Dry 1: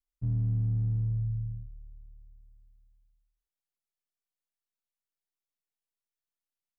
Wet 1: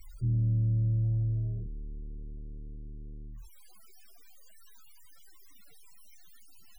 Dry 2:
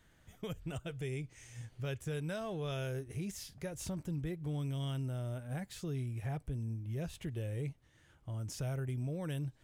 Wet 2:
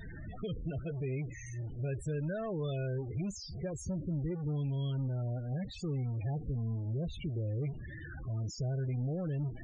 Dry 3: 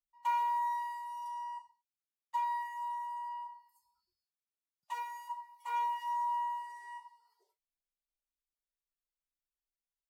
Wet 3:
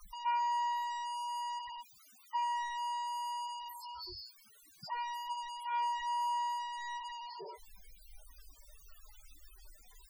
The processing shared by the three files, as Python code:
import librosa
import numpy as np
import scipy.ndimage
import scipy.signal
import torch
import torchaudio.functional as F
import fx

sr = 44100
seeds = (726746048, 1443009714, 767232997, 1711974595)

y = x + 0.5 * 10.0 ** (-36.0 / 20.0) * np.sign(x)
y = fx.dynamic_eq(y, sr, hz=1000.0, q=1.4, threshold_db=-46.0, ratio=4.0, max_db=-3)
y = fx.spec_topn(y, sr, count=16)